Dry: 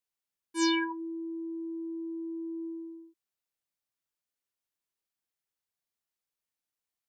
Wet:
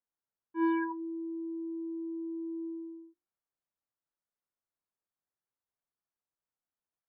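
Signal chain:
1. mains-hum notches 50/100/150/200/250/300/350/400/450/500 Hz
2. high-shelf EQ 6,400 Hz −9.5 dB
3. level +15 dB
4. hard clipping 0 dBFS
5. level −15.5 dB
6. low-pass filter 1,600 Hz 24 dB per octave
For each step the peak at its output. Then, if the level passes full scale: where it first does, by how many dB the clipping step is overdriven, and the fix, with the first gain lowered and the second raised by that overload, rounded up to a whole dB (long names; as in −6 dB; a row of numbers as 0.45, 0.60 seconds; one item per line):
−18.0, −20.0, −5.0, −5.0, −20.5, −23.0 dBFS
no step passes full scale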